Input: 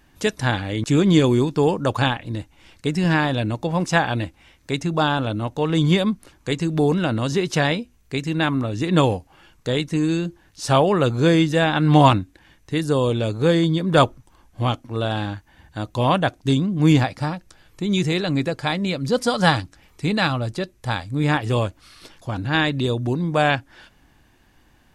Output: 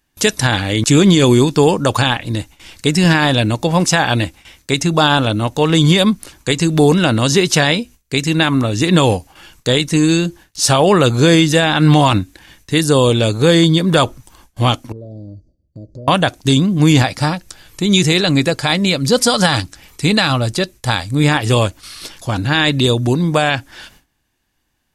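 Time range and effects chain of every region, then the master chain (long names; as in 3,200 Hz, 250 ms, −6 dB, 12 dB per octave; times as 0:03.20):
0:14.92–0:16.08: Chebyshev band-stop filter 620–4,600 Hz, order 5 + downward compressor, threshold −37 dBFS + head-to-tape spacing loss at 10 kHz 41 dB
whole clip: noise gate with hold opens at −42 dBFS; high-shelf EQ 3,200 Hz +11 dB; boost into a limiter +8.5 dB; level −1 dB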